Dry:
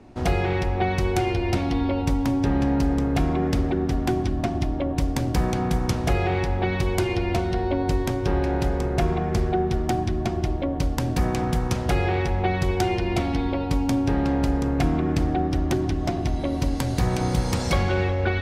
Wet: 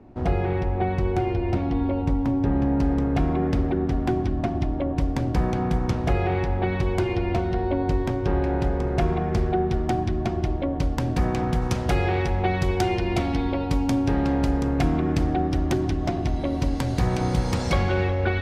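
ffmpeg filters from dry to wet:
-af "asetnsamples=n=441:p=0,asendcmd='2.8 lowpass f 2100;8.87 lowpass f 3600;11.62 lowpass f 9100;15.96 lowpass f 4900',lowpass=f=1k:p=1"

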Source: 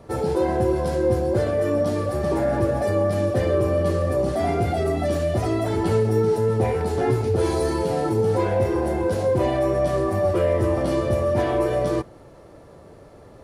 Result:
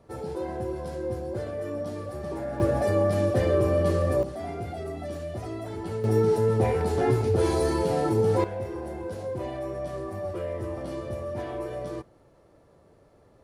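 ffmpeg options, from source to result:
-af "asetnsamples=n=441:p=0,asendcmd='2.6 volume volume -2dB;4.23 volume volume -12dB;6.04 volume volume -2dB;8.44 volume volume -12dB',volume=-11dB"

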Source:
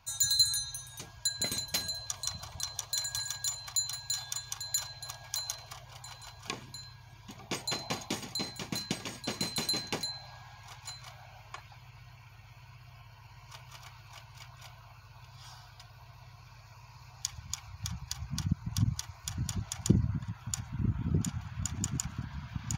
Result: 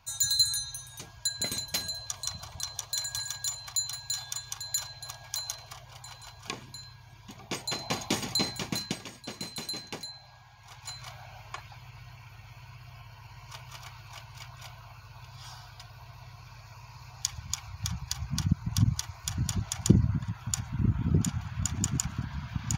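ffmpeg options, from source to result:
-af "volume=17dB,afade=t=in:st=7.75:d=0.57:silence=0.446684,afade=t=out:st=8.32:d=0.79:silence=0.237137,afade=t=in:st=10.57:d=0.46:silence=0.354813"

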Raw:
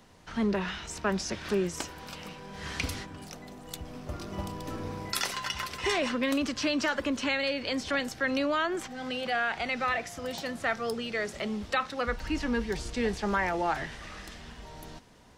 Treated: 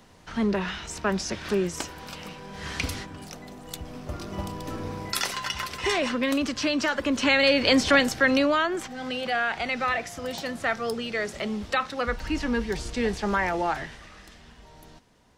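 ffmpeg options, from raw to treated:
-af "volume=12dB,afade=t=in:st=7.02:d=0.68:silence=0.354813,afade=t=out:st=7.7:d=1.01:silence=0.354813,afade=t=out:st=13.61:d=0.49:silence=0.421697"

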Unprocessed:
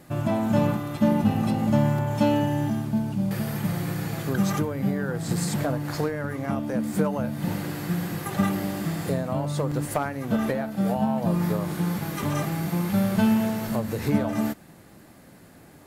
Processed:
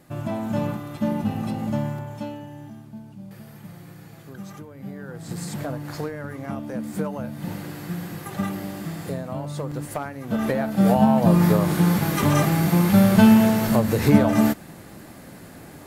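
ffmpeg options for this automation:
-af "volume=18.5dB,afade=t=out:st=1.66:d=0.71:silence=0.281838,afade=t=in:st=4.65:d=1.08:silence=0.281838,afade=t=in:st=10.25:d=0.64:silence=0.281838"

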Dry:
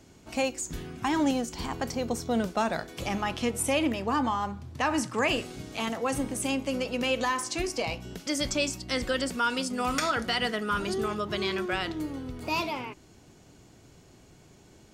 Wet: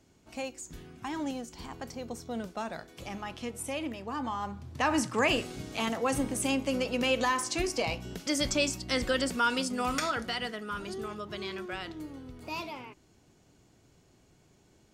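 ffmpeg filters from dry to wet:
-af "afade=t=in:st=4.14:d=0.78:silence=0.354813,afade=t=out:st=9.51:d=1.05:silence=0.398107"

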